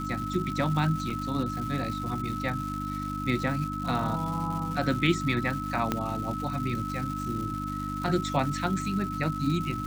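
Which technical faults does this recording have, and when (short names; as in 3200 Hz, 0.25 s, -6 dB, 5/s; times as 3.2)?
crackle 440/s -35 dBFS
hum 50 Hz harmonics 6 -35 dBFS
tone 1300 Hz -34 dBFS
1.1 gap 4.1 ms
5.92 pop -12 dBFS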